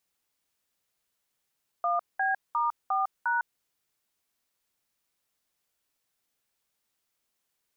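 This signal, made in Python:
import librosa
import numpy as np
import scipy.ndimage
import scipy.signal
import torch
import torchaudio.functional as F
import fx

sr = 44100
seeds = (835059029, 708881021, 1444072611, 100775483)

y = fx.dtmf(sr, digits='1B*4#', tone_ms=154, gap_ms=200, level_db=-26.5)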